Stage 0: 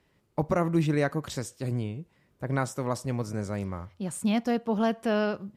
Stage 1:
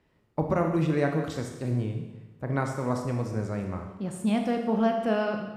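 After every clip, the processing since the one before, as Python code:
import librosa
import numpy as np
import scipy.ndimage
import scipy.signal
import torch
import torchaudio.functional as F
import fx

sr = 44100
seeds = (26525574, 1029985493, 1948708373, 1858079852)

y = fx.high_shelf(x, sr, hz=3700.0, db=-9.0)
y = fx.rev_schroeder(y, sr, rt60_s=1.1, comb_ms=25, drr_db=3.5)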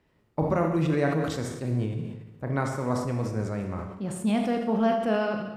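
y = fx.sustainer(x, sr, db_per_s=53.0)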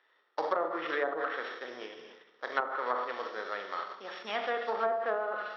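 y = np.r_[np.sort(x[:len(x) // 8 * 8].reshape(-1, 8), axis=1).ravel(), x[len(x) // 8 * 8:]]
y = fx.cabinet(y, sr, low_hz=490.0, low_slope=24, high_hz=3800.0, hz=(620.0, 1300.0, 1800.0, 3400.0), db=(-5, 9, 10, 7))
y = fx.env_lowpass_down(y, sr, base_hz=760.0, full_db=-23.5)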